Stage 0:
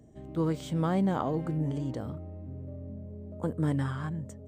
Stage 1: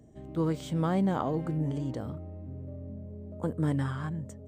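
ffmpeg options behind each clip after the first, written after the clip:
ffmpeg -i in.wav -af anull out.wav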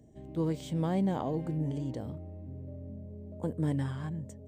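ffmpeg -i in.wav -af "equalizer=frequency=1300:width_type=o:width=0.47:gain=-10.5,volume=-2dB" out.wav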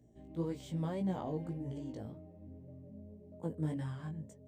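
ffmpeg -i in.wav -af "flanger=delay=16:depth=3.6:speed=1.8,volume=-3.5dB" out.wav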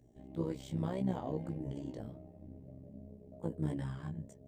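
ffmpeg -i in.wav -af "tremolo=f=66:d=0.75,volume=3.5dB" out.wav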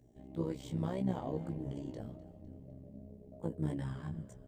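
ffmpeg -i in.wav -filter_complex "[0:a]asplit=5[link_01][link_02][link_03][link_04][link_05];[link_02]adelay=253,afreqshift=-41,volume=-18dB[link_06];[link_03]adelay=506,afreqshift=-82,volume=-23.7dB[link_07];[link_04]adelay=759,afreqshift=-123,volume=-29.4dB[link_08];[link_05]adelay=1012,afreqshift=-164,volume=-35dB[link_09];[link_01][link_06][link_07][link_08][link_09]amix=inputs=5:normalize=0" out.wav

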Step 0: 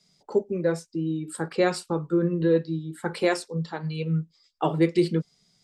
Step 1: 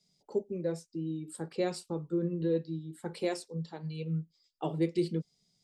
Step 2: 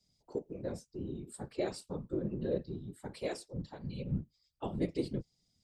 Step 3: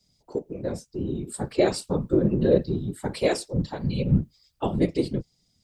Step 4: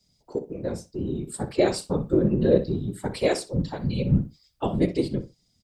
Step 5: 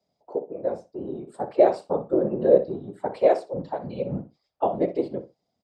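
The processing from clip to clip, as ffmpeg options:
ffmpeg -i in.wav -af "equalizer=frequency=1400:width_type=o:width=1.3:gain=-10,volume=-7.5dB" out.wav
ffmpeg -i in.wav -af "lowshelf=frequency=130:width_type=q:width=1.5:gain=12.5,afftfilt=real='hypot(re,im)*cos(2*PI*random(0))':imag='hypot(re,im)*sin(2*PI*random(1))':win_size=512:overlap=0.75,volume=2dB" out.wav
ffmpeg -i in.wav -af "dynaudnorm=framelen=210:gausssize=11:maxgain=6.5dB,volume=8dB" out.wav
ffmpeg -i in.wav -filter_complex "[0:a]asplit=2[link_01][link_02];[link_02]adelay=62,lowpass=frequency=4300:poles=1,volume=-13dB,asplit=2[link_03][link_04];[link_04]adelay=62,lowpass=frequency=4300:poles=1,volume=0.18[link_05];[link_01][link_03][link_05]amix=inputs=3:normalize=0" out.wav
ffmpeg -i in.wav -af "bandpass=frequency=680:width_type=q:width=2.2:csg=0,volume=8.5dB" out.wav

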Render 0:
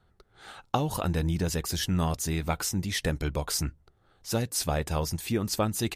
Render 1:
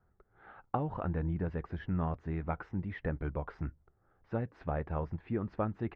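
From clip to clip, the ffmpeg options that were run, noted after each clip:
ffmpeg -i in.wav -af "lowpass=frequency=1800:width=0.5412,lowpass=frequency=1800:width=1.3066,volume=-6dB" out.wav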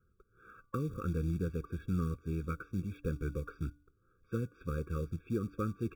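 ffmpeg -i in.wav -af "bandreject=frequency=291.8:width_type=h:width=4,bandreject=frequency=583.6:width_type=h:width=4,bandreject=frequency=875.4:width_type=h:width=4,bandreject=frequency=1167.2:width_type=h:width=4,bandreject=frequency=1459:width_type=h:width=4,acrusher=bits=6:mode=log:mix=0:aa=0.000001,afftfilt=real='re*eq(mod(floor(b*sr/1024/550),2),0)':imag='im*eq(mod(floor(b*sr/1024/550),2),0)':win_size=1024:overlap=0.75" out.wav

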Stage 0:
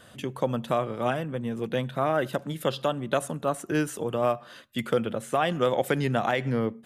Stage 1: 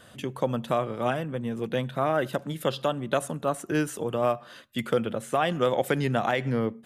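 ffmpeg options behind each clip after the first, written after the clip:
ffmpeg -i in.wav -af anull out.wav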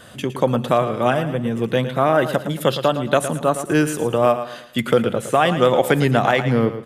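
ffmpeg -i in.wav -af "aecho=1:1:112|224|336|448:0.282|0.101|0.0365|0.0131,volume=8.5dB" out.wav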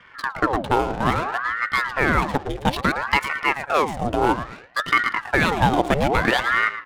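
ffmpeg -i in.wav -af "adynamicsmooth=sensitivity=6:basefreq=670,aeval=exprs='val(0)*sin(2*PI*930*n/s+930*0.8/0.6*sin(2*PI*0.6*n/s))':channel_layout=same" out.wav

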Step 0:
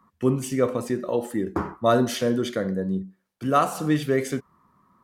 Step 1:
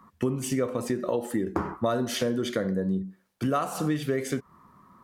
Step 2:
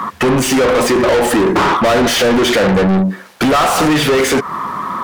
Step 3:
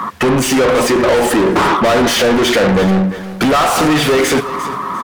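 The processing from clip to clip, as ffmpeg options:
ffmpeg -i in.wav -af "acompressor=threshold=-30dB:ratio=6,volume=6dB" out.wav
ffmpeg -i in.wav -filter_complex "[0:a]asplit=2[link_01][link_02];[link_02]highpass=frequency=720:poles=1,volume=39dB,asoftclip=type=tanh:threshold=-10.5dB[link_03];[link_01][link_03]amix=inputs=2:normalize=0,lowpass=frequency=3300:poles=1,volume=-6dB,volume=5.5dB" out.wav
ffmpeg -i in.wav -af "aecho=1:1:350|700|1050:0.2|0.0559|0.0156" out.wav

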